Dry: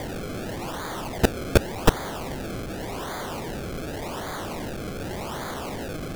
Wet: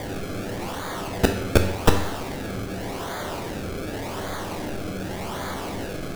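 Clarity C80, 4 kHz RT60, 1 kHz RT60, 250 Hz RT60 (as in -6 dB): 10.0 dB, 0.70 s, 0.80 s, 0.80 s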